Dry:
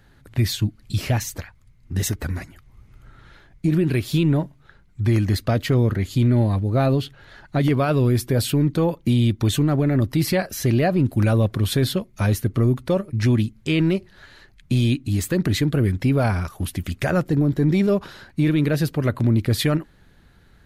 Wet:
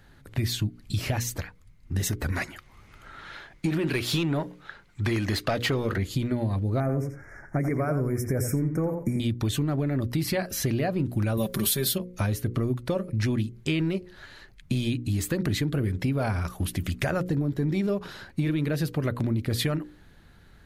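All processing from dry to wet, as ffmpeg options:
-filter_complex "[0:a]asettb=1/sr,asplit=3[a][b][c];[a]atrim=end=2.324[d];[b]atrim=start=2.32:end=5.98,asetpts=PTS-STARTPTS,afade=t=in:d=0.004:c=qsin,afade=t=out:st=3.656:d=0.004:c=qsin,highshelf=f=3k:g=8,asplit=2[e][f];[f]highpass=f=720:p=1,volume=15dB,asoftclip=type=tanh:threshold=-9dB[g];[e][g]amix=inputs=2:normalize=0,lowpass=f=2.1k:p=1,volume=-6dB[h];[c]atrim=start=5.976[i];[d][h]acrossfade=d=0.004:c1=hsin:c2=qsin[j];[j][i]acrossfade=d=0.004:c1=qsin:c2=hsin,asettb=1/sr,asplit=3[k][l][m];[k]atrim=end=6.804[n];[l]atrim=start=6.8:end=9.2,asetpts=PTS-STARTPTS,afade=t=in:d=0.004:c=qsin,afade=t=out:st=2.396:d=0.004:c=qsin,asuperstop=centerf=3500:order=20:qfactor=1.2,equalizer=f=940:w=2.5:g=-4.5,asplit=2[o][p];[p]adelay=87,lowpass=f=4.4k:p=1,volume=-8dB,asplit=2[q][r];[r]adelay=87,lowpass=f=4.4k:p=1,volume=0.15[s];[o][q][s]amix=inputs=3:normalize=0,atrim=end_sample=105840[t];[m]atrim=start=9.196[u];[n][t]acrossfade=d=0.004:c1=hsin:c2=qsin[v];[v][u]acrossfade=d=0.004:c1=qsin:c2=hsin,asettb=1/sr,asplit=3[w][x][y];[w]atrim=end=11.374[z];[x]atrim=start=11.37:end=11.98,asetpts=PTS-STARTPTS,afade=t=in:d=0.004:c=qsin,afade=t=out:st=0.606:d=0.004:c=qsin,aemphasis=mode=production:type=75fm,aecho=1:1:5.1:0.83,atrim=end_sample=26901[aa];[y]atrim=start=11.976[ab];[z][aa]acrossfade=d=0.004:c1=hsin:c2=qsin[ac];[ac][ab]acrossfade=d=0.004:c1=qsin:c2=hsin,bandreject=f=60:t=h:w=6,bandreject=f=120:t=h:w=6,bandreject=f=180:t=h:w=6,bandreject=f=240:t=h:w=6,bandreject=f=300:t=h:w=6,bandreject=f=360:t=h:w=6,bandreject=f=420:t=h:w=6,bandreject=f=480:t=h:w=6,bandreject=f=540:t=h:w=6,acompressor=threshold=-23dB:ratio=6"

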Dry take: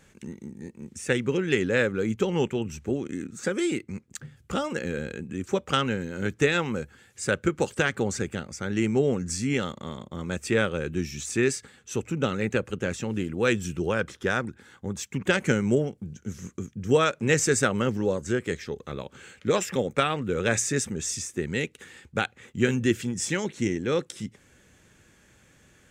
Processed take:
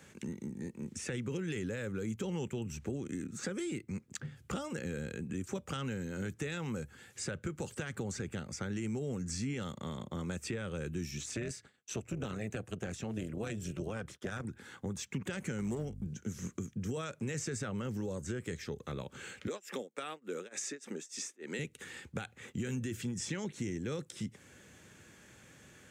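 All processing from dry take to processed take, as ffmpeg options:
-filter_complex "[0:a]asettb=1/sr,asplit=3[a][b][c];[a]atrim=end=11.184[d];[b]atrim=start=11.18:end=14.45,asetpts=PTS-STARTPTS,afade=t=in:d=0.004:c=qsin,afade=t=out:st=3.266:d=0.004:c=qsin,agate=range=-33dB:threshold=-44dB:ratio=3:release=100:detection=peak,tremolo=f=220:d=0.75[e];[c]atrim=start=14.446[f];[d][e]acrossfade=d=0.004:c1=hsin:c2=qsin[g];[g][f]acrossfade=d=0.004:c1=qsin:c2=hsin,asettb=1/sr,asplit=3[h][i][j];[h]atrim=end=15.584[k];[i]atrim=start=15.58:end=16.07,asetpts=PTS-STARTPTS,afade=t=in:d=0.004:c=qsin,afade=t=out:st=0.486:d=0.004:c=qsin,aeval=exprs='val(0)+0.0126*(sin(2*PI*50*n/s)+sin(2*PI*2*50*n/s)/2+sin(2*PI*3*50*n/s)/3+sin(2*PI*4*50*n/s)/4+sin(2*PI*5*50*n/s)/5)':c=same,aeval=exprs='clip(val(0),-1,0.112)':c=same[l];[j]atrim=start=16.066[m];[k][l]acrossfade=d=0.004:c1=hsin:c2=qsin[n];[n][m]acrossfade=d=0.004:c1=qsin:c2=hsin,asettb=1/sr,asplit=3[o][p][q];[o]atrim=end=19.474[r];[p]atrim=start=19.47:end=21.59,asetpts=PTS-STARTPTS,afade=t=in:d=0.004:c=qsin,afade=t=out:st=2.116:d=0.004:c=qsin,tremolo=f=3.4:d=0.98,highpass=f=260:w=0.5412,highpass=f=260:w=1.3066[s];[q]atrim=start=21.586[t];[r][s]acrossfade=d=0.004:c1=hsin:c2=qsin[u];[u][t]acrossfade=d=0.004:c1=qsin:c2=hsin,alimiter=limit=-19dB:level=0:latency=1:release=20,highpass=82,acrossover=split=160|6500[v][w][x];[v]acompressor=threshold=-41dB:ratio=4[y];[w]acompressor=threshold=-41dB:ratio=4[z];[x]acompressor=threshold=-53dB:ratio=4[aa];[y][z][aa]amix=inputs=3:normalize=0,volume=1dB"

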